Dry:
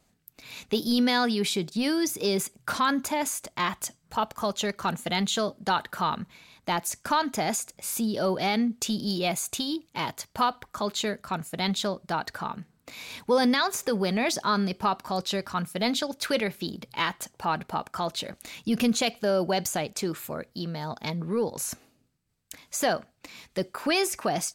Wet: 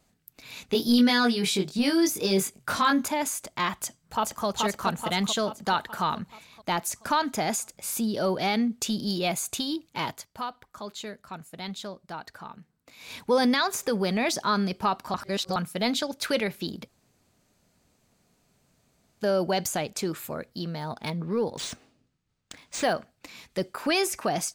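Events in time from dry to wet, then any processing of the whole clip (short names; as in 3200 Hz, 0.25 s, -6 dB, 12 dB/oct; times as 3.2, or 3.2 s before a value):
0.68–3.08 doubler 21 ms -3 dB
3.75–4.46 echo throw 0.43 s, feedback 55%, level -2.5 dB
10.12–13.12 dip -9 dB, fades 0.13 s
15.14–15.56 reverse
16.88–19.21 room tone
20.79–22.95 decimation joined by straight lines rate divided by 3×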